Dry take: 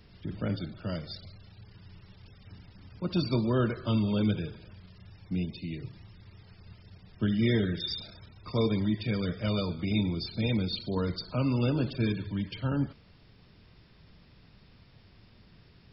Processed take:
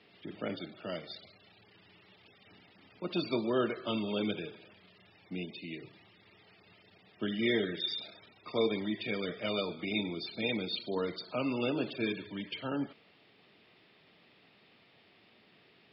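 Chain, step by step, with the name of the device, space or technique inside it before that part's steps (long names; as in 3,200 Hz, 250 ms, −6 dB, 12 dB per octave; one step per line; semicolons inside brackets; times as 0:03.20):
phone earpiece (loudspeaker in its box 410–3,600 Hz, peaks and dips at 530 Hz −4 dB, 1,000 Hz −7 dB, 1,500 Hz −7 dB)
level +4 dB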